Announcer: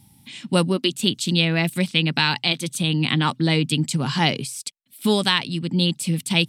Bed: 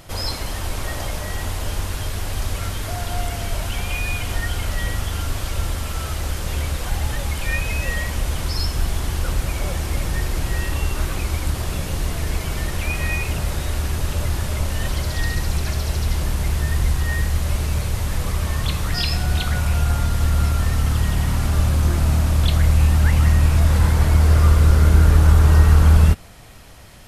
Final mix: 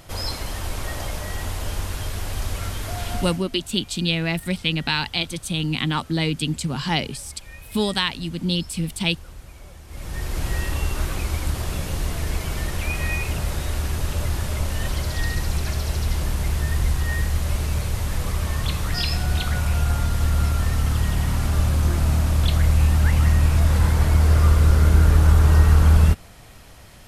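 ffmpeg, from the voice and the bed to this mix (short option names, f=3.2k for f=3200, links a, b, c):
-filter_complex "[0:a]adelay=2700,volume=-3dB[a];[1:a]volume=14.5dB,afade=t=out:st=3.15:d=0.28:silence=0.149624,afade=t=in:st=9.87:d=0.59:silence=0.141254[b];[a][b]amix=inputs=2:normalize=0"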